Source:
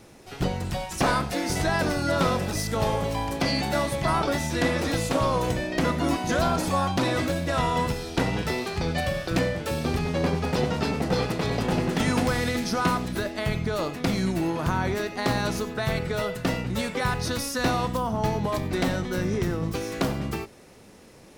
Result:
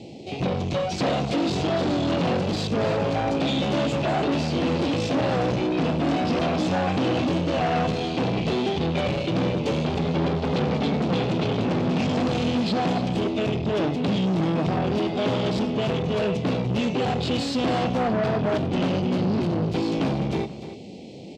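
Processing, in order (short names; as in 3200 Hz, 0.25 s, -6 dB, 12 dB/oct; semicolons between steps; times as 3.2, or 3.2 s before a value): in parallel at +1 dB: limiter -19 dBFS, peak gain reduction 7.5 dB; on the sum: formant shift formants -4 st; Chebyshev band-stop 770–2400 Hz, order 3; tube stage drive 27 dB, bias 0.4; HPF 130 Hz 12 dB/oct; air absorption 160 m; on a send: echo 0.294 s -12.5 dB; on the sum: gain +7.5 dB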